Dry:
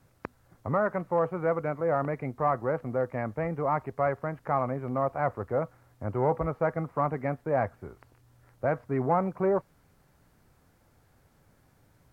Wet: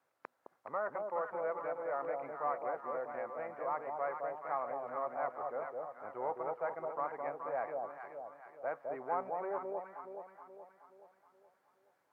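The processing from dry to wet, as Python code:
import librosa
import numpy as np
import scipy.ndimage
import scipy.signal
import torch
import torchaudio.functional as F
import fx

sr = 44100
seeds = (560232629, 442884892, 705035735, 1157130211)

y = scipy.signal.sosfilt(scipy.signal.butter(2, 670.0, 'highpass', fs=sr, output='sos'), x)
y = fx.high_shelf(y, sr, hz=2400.0, db=-11.5)
y = fx.echo_alternate(y, sr, ms=212, hz=870.0, feedback_pct=68, wet_db=-2.0)
y = y * 10.0 ** (-6.0 / 20.0)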